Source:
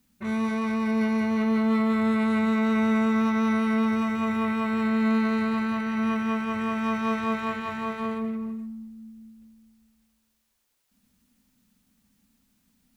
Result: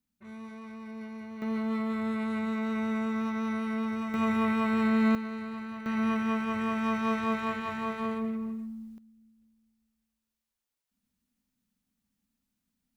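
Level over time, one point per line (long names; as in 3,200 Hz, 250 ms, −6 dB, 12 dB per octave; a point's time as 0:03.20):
−17 dB
from 0:01.42 −8 dB
from 0:04.14 −1 dB
from 0:05.15 −12 dB
from 0:05.86 −2.5 dB
from 0:08.98 −14 dB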